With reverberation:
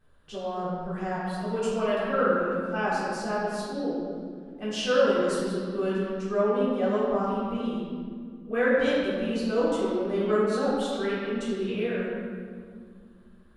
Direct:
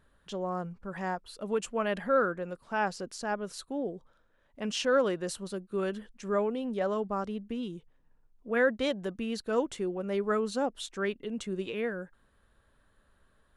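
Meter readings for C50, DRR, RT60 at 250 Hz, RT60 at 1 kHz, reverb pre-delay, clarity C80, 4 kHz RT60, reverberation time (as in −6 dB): −2.5 dB, −11.5 dB, 3.3 s, 1.9 s, 3 ms, −0.5 dB, 1.3 s, 2.1 s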